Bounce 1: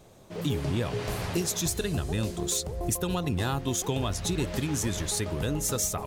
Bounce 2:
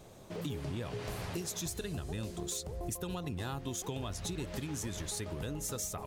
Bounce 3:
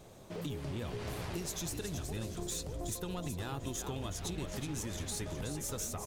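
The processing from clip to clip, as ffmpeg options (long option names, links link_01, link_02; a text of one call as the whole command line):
ffmpeg -i in.wav -af "acompressor=threshold=-40dB:ratio=2.5" out.wav
ffmpeg -i in.wav -filter_complex "[0:a]asplit=6[link_01][link_02][link_03][link_04][link_05][link_06];[link_02]adelay=372,afreqshift=-58,volume=-7.5dB[link_07];[link_03]adelay=744,afreqshift=-116,volume=-15dB[link_08];[link_04]adelay=1116,afreqshift=-174,volume=-22.6dB[link_09];[link_05]adelay=1488,afreqshift=-232,volume=-30.1dB[link_10];[link_06]adelay=1860,afreqshift=-290,volume=-37.6dB[link_11];[link_01][link_07][link_08][link_09][link_10][link_11]amix=inputs=6:normalize=0,aeval=exprs='(tanh(25.1*val(0)+0.25)-tanh(0.25))/25.1':channel_layout=same" out.wav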